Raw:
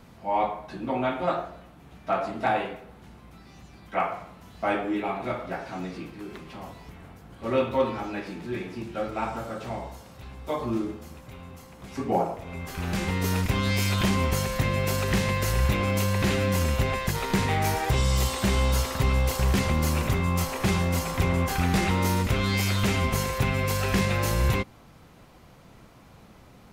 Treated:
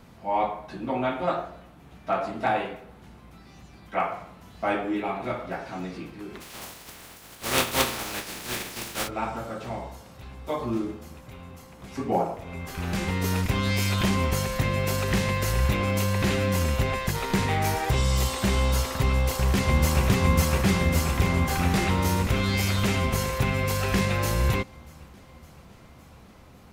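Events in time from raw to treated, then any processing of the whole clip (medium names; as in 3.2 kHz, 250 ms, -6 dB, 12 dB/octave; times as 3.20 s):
6.40–9.07 s: spectral contrast reduction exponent 0.3
19.11–20.05 s: echo throw 560 ms, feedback 70%, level -1 dB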